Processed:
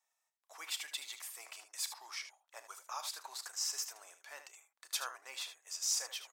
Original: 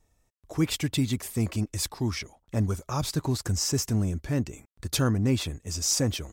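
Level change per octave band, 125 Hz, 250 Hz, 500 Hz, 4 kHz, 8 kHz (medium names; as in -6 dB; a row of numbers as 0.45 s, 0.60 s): under -40 dB, under -40 dB, -24.5 dB, -7.5 dB, -7.5 dB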